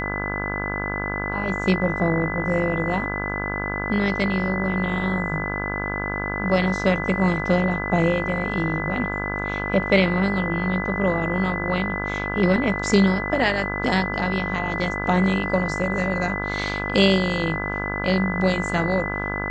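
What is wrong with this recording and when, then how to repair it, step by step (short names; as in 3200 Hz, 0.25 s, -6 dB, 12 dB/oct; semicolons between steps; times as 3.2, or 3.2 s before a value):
buzz 50 Hz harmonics 34 -29 dBFS
tone 2000 Hz -28 dBFS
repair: de-hum 50 Hz, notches 34; notch 2000 Hz, Q 30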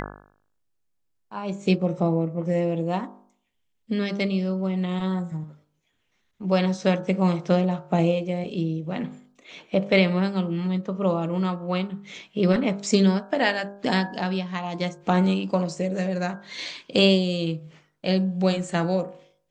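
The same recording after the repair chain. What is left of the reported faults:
none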